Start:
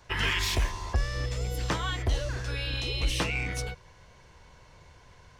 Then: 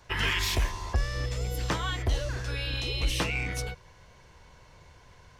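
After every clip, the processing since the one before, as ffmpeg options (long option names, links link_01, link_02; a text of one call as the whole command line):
ffmpeg -i in.wav -af "equalizer=frequency=12000:width=4.5:gain=5" out.wav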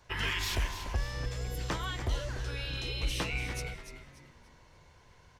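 ffmpeg -i in.wav -filter_complex "[0:a]asplit=5[link_01][link_02][link_03][link_04][link_05];[link_02]adelay=291,afreqshift=-100,volume=-10dB[link_06];[link_03]adelay=582,afreqshift=-200,volume=-19.6dB[link_07];[link_04]adelay=873,afreqshift=-300,volume=-29.3dB[link_08];[link_05]adelay=1164,afreqshift=-400,volume=-38.9dB[link_09];[link_01][link_06][link_07][link_08][link_09]amix=inputs=5:normalize=0,volume=-5dB" out.wav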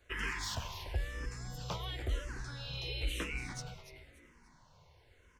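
ffmpeg -i in.wav -filter_complex "[0:a]asplit=2[link_01][link_02];[link_02]afreqshift=-0.97[link_03];[link_01][link_03]amix=inputs=2:normalize=1,volume=-2dB" out.wav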